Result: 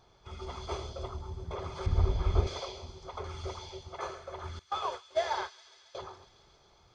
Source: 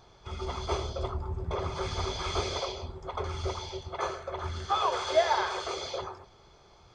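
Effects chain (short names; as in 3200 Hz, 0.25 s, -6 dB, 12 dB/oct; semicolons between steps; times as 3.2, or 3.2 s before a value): 1.86–2.47 tilt -4 dB/oct; 4.59–5.95 gate -28 dBFS, range -29 dB; thin delay 0.137 s, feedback 79%, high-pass 3300 Hz, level -11.5 dB; gain -6 dB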